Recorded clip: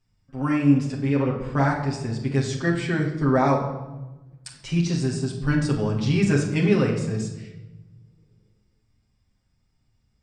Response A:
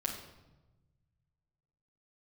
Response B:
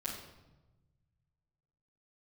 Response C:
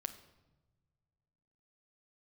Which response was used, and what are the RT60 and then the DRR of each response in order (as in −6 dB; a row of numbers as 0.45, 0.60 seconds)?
A; 1.1, 1.1, 1.2 seconds; −3.0, −9.5, 7.0 decibels